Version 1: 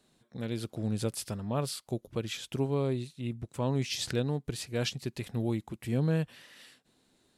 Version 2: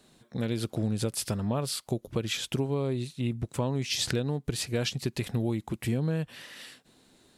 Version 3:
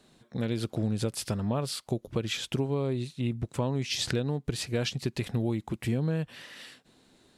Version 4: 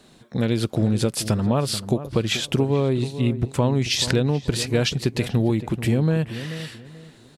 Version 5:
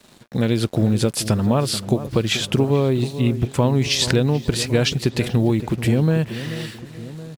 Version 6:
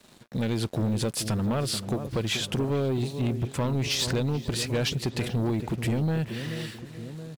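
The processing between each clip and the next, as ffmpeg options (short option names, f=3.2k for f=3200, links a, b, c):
-af "acompressor=threshold=-33dB:ratio=6,volume=8dB"
-af "highshelf=f=9.1k:g=-8"
-filter_complex "[0:a]asplit=2[a][b];[b]adelay=434,lowpass=f=1.3k:p=1,volume=-12dB,asplit=2[c][d];[d]adelay=434,lowpass=f=1.3k:p=1,volume=0.29,asplit=2[e][f];[f]adelay=434,lowpass=f=1.3k:p=1,volume=0.29[g];[a][c][e][g]amix=inputs=4:normalize=0,volume=8.5dB"
-filter_complex "[0:a]acrusher=bits=7:mix=0:aa=0.5,asplit=2[a][b];[b]adelay=1108,volume=-17dB,highshelf=f=4k:g=-24.9[c];[a][c]amix=inputs=2:normalize=0,volume=2.5dB"
-af "asoftclip=type=tanh:threshold=-16.5dB,volume=-4.5dB"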